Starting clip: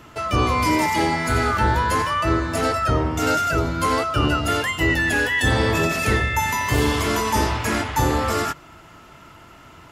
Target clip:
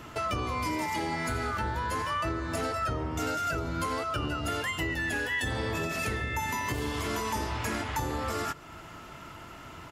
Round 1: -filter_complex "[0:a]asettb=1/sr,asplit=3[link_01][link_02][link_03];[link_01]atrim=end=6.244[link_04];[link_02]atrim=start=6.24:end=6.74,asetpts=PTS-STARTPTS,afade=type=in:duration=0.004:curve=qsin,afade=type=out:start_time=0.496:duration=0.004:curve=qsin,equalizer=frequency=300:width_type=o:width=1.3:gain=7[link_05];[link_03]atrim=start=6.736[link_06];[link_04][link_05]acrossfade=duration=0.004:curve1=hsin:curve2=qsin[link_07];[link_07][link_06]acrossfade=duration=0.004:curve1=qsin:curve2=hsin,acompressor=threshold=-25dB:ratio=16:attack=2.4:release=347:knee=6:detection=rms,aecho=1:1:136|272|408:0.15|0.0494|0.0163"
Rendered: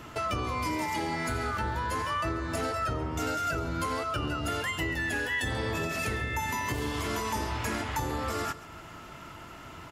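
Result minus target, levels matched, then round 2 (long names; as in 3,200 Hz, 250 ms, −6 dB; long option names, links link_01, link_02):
echo-to-direct +9 dB
-filter_complex "[0:a]asettb=1/sr,asplit=3[link_01][link_02][link_03];[link_01]atrim=end=6.244[link_04];[link_02]atrim=start=6.24:end=6.74,asetpts=PTS-STARTPTS,afade=type=in:duration=0.004:curve=qsin,afade=type=out:start_time=0.496:duration=0.004:curve=qsin,equalizer=frequency=300:width_type=o:width=1.3:gain=7[link_05];[link_03]atrim=start=6.736[link_06];[link_04][link_05]acrossfade=duration=0.004:curve1=hsin:curve2=qsin[link_07];[link_07][link_06]acrossfade=duration=0.004:curve1=qsin:curve2=hsin,acompressor=threshold=-25dB:ratio=16:attack=2.4:release=347:knee=6:detection=rms,aecho=1:1:136|272:0.0531|0.0175"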